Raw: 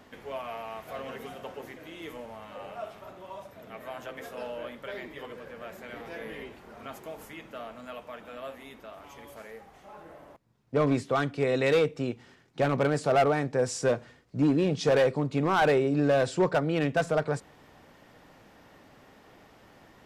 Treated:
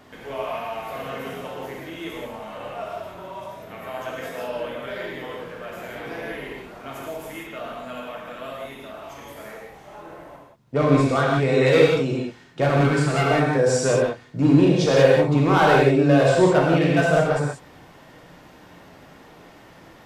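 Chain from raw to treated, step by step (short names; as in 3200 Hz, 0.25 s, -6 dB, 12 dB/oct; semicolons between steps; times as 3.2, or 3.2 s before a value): 12.76–13.31 bell 600 Hz -13.5 dB 0.66 oct; reverb, pre-delay 3 ms, DRR -3.5 dB; gain +3 dB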